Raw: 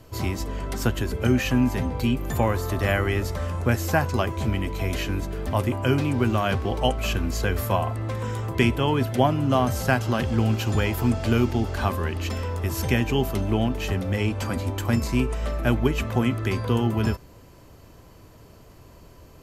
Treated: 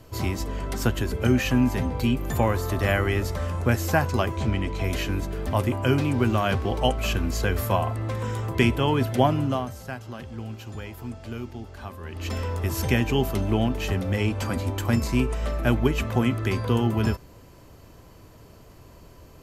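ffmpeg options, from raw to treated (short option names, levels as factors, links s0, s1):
-filter_complex "[0:a]asettb=1/sr,asplit=3[s0][s1][s2];[s0]atrim=end=4.374[s3];[s1]atrim=start=4.37:end=4.84,asetpts=PTS-STARTPTS,afade=t=in:d=0.004:c=qsin,afade=t=out:st=0.466:d=0.004:c=qsin,lowpass=7800[s4];[s2]atrim=start=4.836[s5];[s3][s4]acrossfade=d=0.004:c1=hsin:c2=qsin[s6];[s6][s5]acrossfade=d=0.004:c1=qsin:c2=hsin,asplit=3[s7][s8][s9];[s7]atrim=end=9.82,asetpts=PTS-STARTPTS,afade=t=out:st=9.4:d=0.42:c=qua:silence=0.211349[s10];[s8]atrim=start=9.82:end=11.92,asetpts=PTS-STARTPTS,volume=0.211[s11];[s9]atrim=start=11.92,asetpts=PTS-STARTPTS,afade=t=in:d=0.42:c=qua:silence=0.211349[s12];[s10][s11][s12]concat=n=3:v=0:a=1"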